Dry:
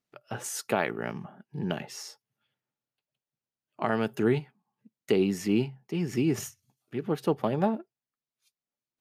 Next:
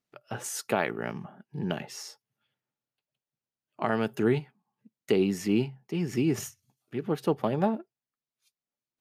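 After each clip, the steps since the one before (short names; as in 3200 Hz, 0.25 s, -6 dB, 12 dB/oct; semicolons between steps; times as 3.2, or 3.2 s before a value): nothing audible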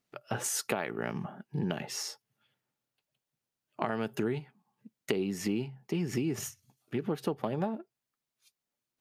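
compressor 6:1, threshold -33 dBFS, peak gain reduction 13 dB; gain +4.5 dB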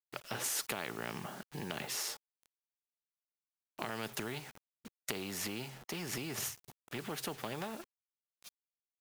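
in parallel at +2.5 dB: limiter -24.5 dBFS, peak gain reduction 10 dB; on the sum: bit-crush 9-bit; spectral compressor 2:1; gain -7 dB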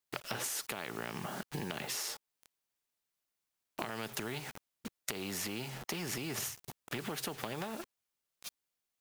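compressor, threshold -44 dBFS, peak gain reduction 11.5 dB; gain +8.5 dB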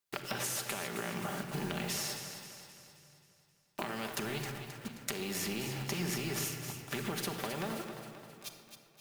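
split-band echo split 430 Hz, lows 96 ms, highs 0.265 s, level -9 dB; reverb RT60 1.9 s, pre-delay 5 ms, DRR 4 dB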